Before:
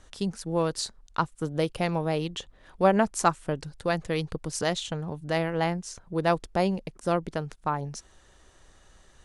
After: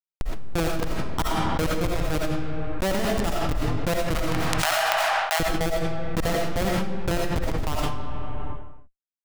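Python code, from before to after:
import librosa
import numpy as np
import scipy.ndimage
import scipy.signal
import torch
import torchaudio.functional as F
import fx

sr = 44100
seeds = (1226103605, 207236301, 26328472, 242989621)

y = fx.schmitt(x, sr, flips_db=-22.0)
y = fx.ellip_highpass(y, sr, hz=700.0, order=4, stop_db=50, at=(4.15, 5.4))
y = fx.rev_freeverb(y, sr, rt60_s=0.93, hf_ratio=0.75, predelay_ms=45, drr_db=-1.0)
y = fx.env_flatten(y, sr, amount_pct=100)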